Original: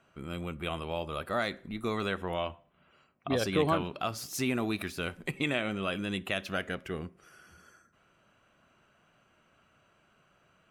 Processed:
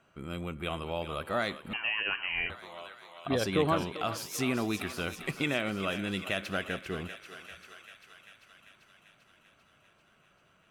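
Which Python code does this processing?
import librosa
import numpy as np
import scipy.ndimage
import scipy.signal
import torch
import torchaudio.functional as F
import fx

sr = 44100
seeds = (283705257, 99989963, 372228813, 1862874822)

y = fx.echo_thinned(x, sr, ms=393, feedback_pct=72, hz=660.0, wet_db=-10.0)
y = fx.freq_invert(y, sr, carrier_hz=3000, at=(1.73, 2.5))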